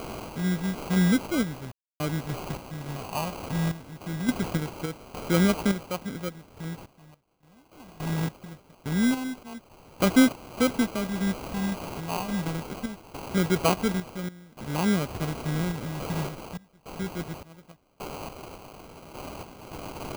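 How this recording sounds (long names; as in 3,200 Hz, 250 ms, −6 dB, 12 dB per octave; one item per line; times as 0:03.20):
a quantiser's noise floor 6 bits, dither triangular
sample-and-hold tremolo, depth 100%
phaser sweep stages 4, 0.23 Hz, lowest notch 420–4,700 Hz
aliases and images of a low sample rate 1,800 Hz, jitter 0%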